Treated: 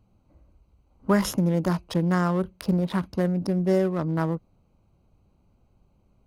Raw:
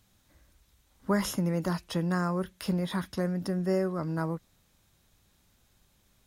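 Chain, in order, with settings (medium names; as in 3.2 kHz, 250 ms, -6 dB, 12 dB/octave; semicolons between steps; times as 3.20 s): local Wiener filter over 25 samples; trim +6 dB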